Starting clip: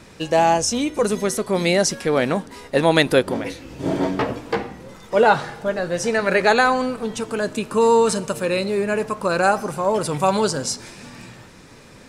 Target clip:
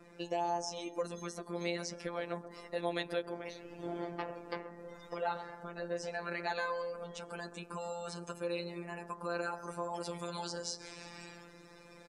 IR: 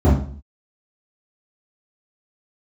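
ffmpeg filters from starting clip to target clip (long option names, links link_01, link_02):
-filter_complex "[0:a]acompressor=threshold=-33dB:ratio=2,asetnsamples=nb_out_samples=441:pad=0,asendcmd='9.63 highshelf g -2.5',highshelf=frequency=3300:gain=-8,asplit=2[link_01][link_02];[link_02]adelay=131,lowpass=frequency=1300:poles=1,volume=-11.5dB,asplit=2[link_03][link_04];[link_04]adelay=131,lowpass=frequency=1300:poles=1,volume=0.54,asplit=2[link_05][link_06];[link_06]adelay=131,lowpass=frequency=1300:poles=1,volume=0.54,asplit=2[link_07][link_08];[link_08]adelay=131,lowpass=frequency=1300:poles=1,volume=0.54,asplit=2[link_09][link_10];[link_10]adelay=131,lowpass=frequency=1300:poles=1,volume=0.54,asplit=2[link_11][link_12];[link_12]adelay=131,lowpass=frequency=1300:poles=1,volume=0.54[link_13];[link_01][link_03][link_05][link_07][link_09][link_11][link_13]amix=inputs=7:normalize=0,afftdn=noise_reduction=18:noise_floor=-51,afftfilt=real='hypot(re,im)*cos(PI*b)':imag='0':win_size=1024:overlap=0.75,bass=frequency=250:gain=-8,treble=frequency=4000:gain=13,acrossover=split=5100[link_14][link_15];[link_15]acompressor=threshold=-50dB:ratio=4:attack=1:release=60[link_16];[link_14][link_16]amix=inputs=2:normalize=0,volume=-4.5dB"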